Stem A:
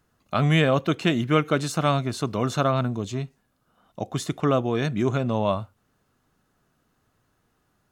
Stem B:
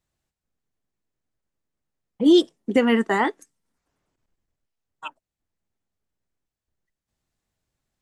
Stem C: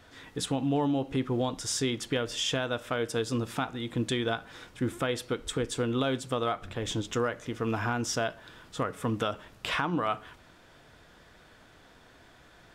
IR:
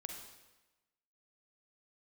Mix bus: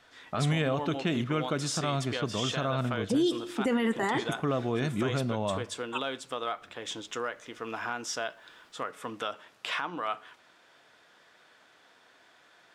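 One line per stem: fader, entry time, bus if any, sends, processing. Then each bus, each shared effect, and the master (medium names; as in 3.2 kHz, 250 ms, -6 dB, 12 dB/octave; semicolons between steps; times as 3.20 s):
-6.0 dB, 0.00 s, send -14.5 dB, level-controlled noise filter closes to 750 Hz, open at -18.5 dBFS
-2.0 dB, 0.90 s, send -12.5 dB, treble shelf 8.2 kHz +10 dB
-2.5 dB, 0.00 s, no send, frequency weighting A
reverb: on, RT60 1.1 s, pre-delay 39 ms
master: peak limiter -19 dBFS, peak gain reduction 12 dB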